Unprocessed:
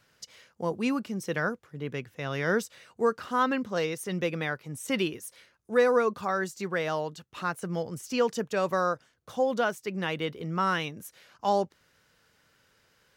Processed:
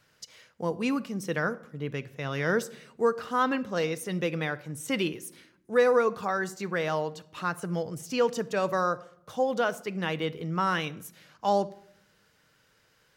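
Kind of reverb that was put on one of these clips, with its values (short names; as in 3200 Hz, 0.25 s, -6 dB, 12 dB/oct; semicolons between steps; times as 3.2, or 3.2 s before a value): shoebox room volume 1900 m³, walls furnished, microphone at 0.52 m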